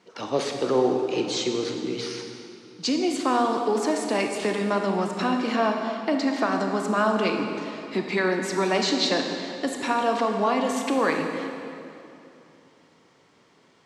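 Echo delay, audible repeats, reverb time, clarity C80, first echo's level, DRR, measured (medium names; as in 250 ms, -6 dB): no echo, no echo, 2.8 s, 5.0 dB, no echo, 3.0 dB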